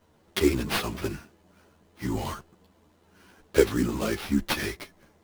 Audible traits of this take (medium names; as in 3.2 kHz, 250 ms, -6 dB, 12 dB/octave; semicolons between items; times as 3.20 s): aliases and images of a low sample rate 7.5 kHz, jitter 20%; a shimmering, thickened sound